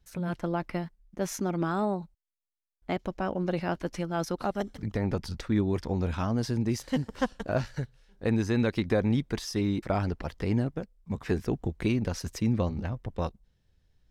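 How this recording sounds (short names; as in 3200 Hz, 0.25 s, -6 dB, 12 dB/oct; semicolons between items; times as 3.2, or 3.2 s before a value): noise floor -72 dBFS; spectral tilt -6.0 dB/oct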